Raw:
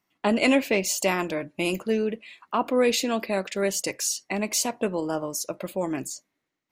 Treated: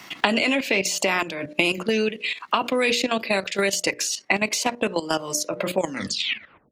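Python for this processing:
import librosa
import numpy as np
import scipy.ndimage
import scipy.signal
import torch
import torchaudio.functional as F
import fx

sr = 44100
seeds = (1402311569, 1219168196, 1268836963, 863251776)

y = fx.tape_stop_end(x, sr, length_s=0.92)
y = fx.highpass(y, sr, hz=82.0, slope=6)
y = fx.peak_eq(y, sr, hz=3500.0, db=8.0, octaves=2.6)
y = fx.hum_notches(y, sr, base_hz=60, count=10)
y = fx.level_steps(y, sr, step_db=13)
y = fx.high_shelf(y, sr, hz=5600.0, db=-5.0)
y = fx.band_squash(y, sr, depth_pct=100)
y = y * 10.0 ** (5.0 / 20.0)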